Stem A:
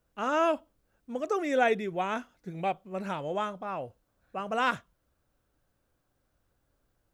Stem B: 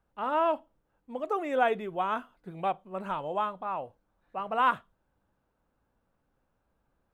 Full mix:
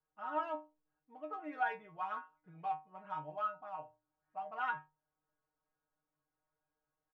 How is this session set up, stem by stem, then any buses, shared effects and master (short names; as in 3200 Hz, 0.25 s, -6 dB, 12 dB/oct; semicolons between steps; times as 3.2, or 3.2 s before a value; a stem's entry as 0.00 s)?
-9.0 dB, 0.00 s, no send, spectral gate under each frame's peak -10 dB strong; notches 60/120 Hz
+1.0 dB, 1.5 ms, no send, Wiener smoothing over 9 samples; tilt +4 dB/oct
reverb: off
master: LPF 1800 Hz 12 dB/oct; metallic resonator 150 Hz, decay 0.26 s, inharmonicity 0.002